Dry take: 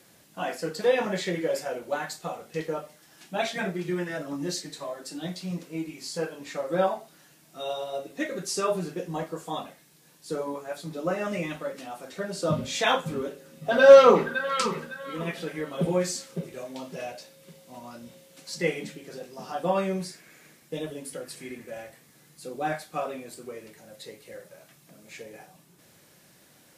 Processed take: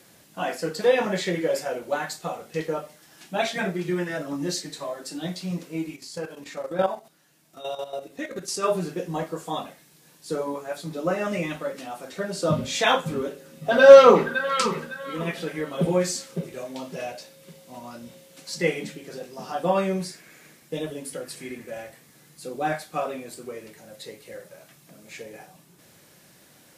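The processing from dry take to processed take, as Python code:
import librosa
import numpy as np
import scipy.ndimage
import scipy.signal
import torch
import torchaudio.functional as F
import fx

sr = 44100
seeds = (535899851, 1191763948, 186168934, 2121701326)

y = fx.level_steps(x, sr, step_db=11, at=(5.95, 8.62), fade=0.02)
y = y * 10.0 ** (3.0 / 20.0)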